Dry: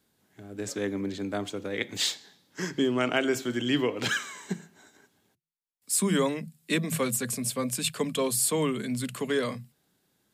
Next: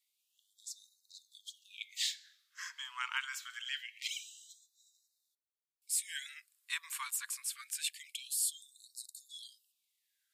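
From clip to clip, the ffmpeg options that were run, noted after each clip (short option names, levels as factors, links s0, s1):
-filter_complex "[0:a]acrossover=split=170|510|4200[s0][s1][s2][s3];[s0]acompressor=threshold=0.00398:ratio=16[s4];[s4][s1][s2][s3]amix=inputs=4:normalize=0,afftfilt=real='re*gte(b*sr/1024,880*pow(3700/880,0.5+0.5*sin(2*PI*0.25*pts/sr)))':imag='im*gte(b*sr/1024,880*pow(3700/880,0.5+0.5*sin(2*PI*0.25*pts/sr)))':win_size=1024:overlap=0.75,volume=0.447"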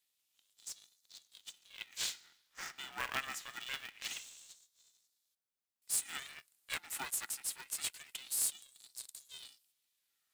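-filter_complex "[0:a]acrossover=split=3000|4300[s0][s1][s2];[s1]acompressor=threshold=0.00112:ratio=6[s3];[s0][s3][s2]amix=inputs=3:normalize=0,aeval=exprs='val(0)*sgn(sin(2*PI*270*n/s))':c=same"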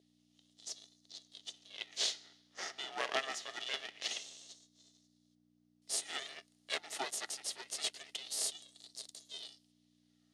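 -af "aeval=exprs='val(0)+0.000708*(sin(2*PI*60*n/s)+sin(2*PI*2*60*n/s)/2+sin(2*PI*3*60*n/s)/3+sin(2*PI*4*60*n/s)/4+sin(2*PI*5*60*n/s)/5)':c=same,highpass=340,equalizer=f=410:t=q:w=4:g=8,equalizer=f=650:t=q:w=4:g=8,equalizer=f=1000:t=q:w=4:g=-7,equalizer=f=1500:t=q:w=4:g=-9,equalizer=f=2400:t=q:w=4:g=-8,equalizer=f=7700:t=q:w=4:g=-10,lowpass=f=8100:w=0.5412,lowpass=f=8100:w=1.3066,volume=2"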